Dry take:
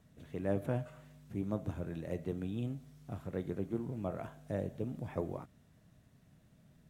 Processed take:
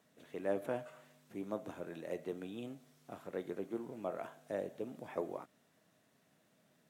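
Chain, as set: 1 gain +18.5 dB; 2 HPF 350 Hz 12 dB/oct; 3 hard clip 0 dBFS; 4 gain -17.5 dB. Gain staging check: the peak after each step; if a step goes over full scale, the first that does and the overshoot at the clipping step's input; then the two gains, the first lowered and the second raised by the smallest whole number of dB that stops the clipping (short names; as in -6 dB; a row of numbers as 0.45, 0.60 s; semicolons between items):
-2.0, -5.0, -5.0, -22.5 dBFS; no overload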